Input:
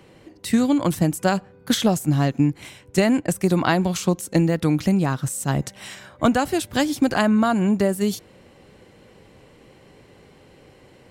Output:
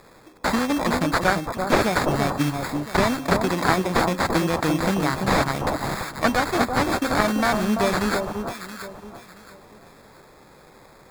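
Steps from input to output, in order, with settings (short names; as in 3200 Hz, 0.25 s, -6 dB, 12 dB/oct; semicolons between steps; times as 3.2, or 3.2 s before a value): elliptic low-pass 11000 Hz; tilt +3.5 dB/oct; de-hum 262.4 Hz, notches 18; in parallel at +1.5 dB: vocal rider within 3 dB 0.5 s; on the sum: sample-and-hold 15×; on a send: echo with dull and thin repeats by turns 0.338 s, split 1100 Hz, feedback 52%, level -4.5 dB; on the sum: slew limiter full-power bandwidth 910 Hz; gain -5 dB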